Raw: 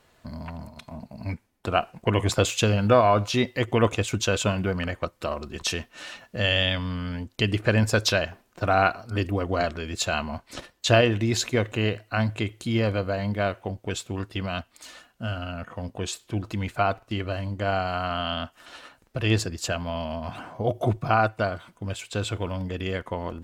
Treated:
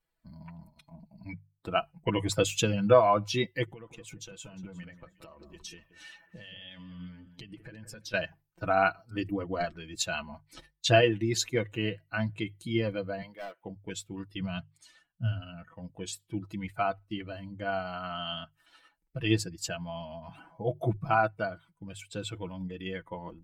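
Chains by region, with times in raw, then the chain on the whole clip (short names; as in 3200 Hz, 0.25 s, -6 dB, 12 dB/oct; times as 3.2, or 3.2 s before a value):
3.7–8.14 compressor 8:1, threshold -32 dBFS + echo with dull and thin repeats by turns 0.178 s, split 2000 Hz, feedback 55%, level -7.5 dB
13.22–13.62 HPF 440 Hz + hard clip -27 dBFS
14.4–15.41 LPF 11000 Hz + bell 120 Hz +12 dB 0.61 oct
whole clip: per-bin expansion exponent 1.5; notches 50/100/150 Hz; comb 6.1 ms, depth 58%; gain -2.5 dB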